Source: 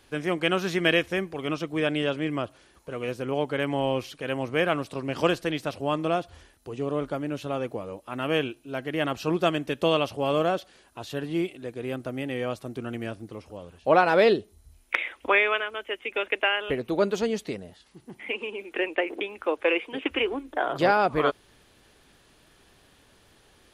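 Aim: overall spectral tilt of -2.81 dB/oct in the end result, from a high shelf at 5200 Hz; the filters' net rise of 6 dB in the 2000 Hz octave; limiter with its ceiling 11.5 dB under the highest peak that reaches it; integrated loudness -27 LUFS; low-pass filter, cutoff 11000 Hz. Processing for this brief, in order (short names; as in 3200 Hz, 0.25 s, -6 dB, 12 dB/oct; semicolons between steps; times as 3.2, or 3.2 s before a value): LPF 11000 Hz; bell 2000 Hz +9 dB; high shelf 5200 Hz -8.5 dB; gain -1 dB; limiter -11.5 dBFS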